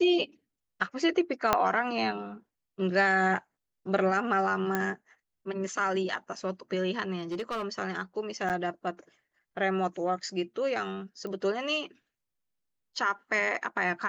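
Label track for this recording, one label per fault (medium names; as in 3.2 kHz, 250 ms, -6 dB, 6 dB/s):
1.530000	1.530000	pop -8 dBFS
4.750000	4.750000	pop -14 dBFS
7.190000	7.650000	clipped -29 dBFS
8.490000	8.500000	dropout 8.3 ms
11.270000	11.270000	pop -27 dBFS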